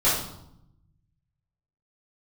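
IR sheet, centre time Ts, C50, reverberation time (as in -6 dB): 50 ms, 2.5 dB, 0.80 s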